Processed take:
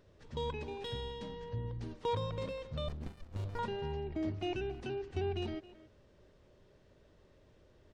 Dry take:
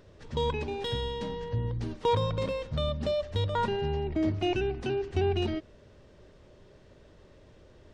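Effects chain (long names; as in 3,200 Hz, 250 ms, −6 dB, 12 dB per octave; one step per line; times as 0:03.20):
far-end echo of a speakerphone 270 ms, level −16 dB
0:02.88–0:03.59: windowed peak hold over 65 samples
level −8.5 dB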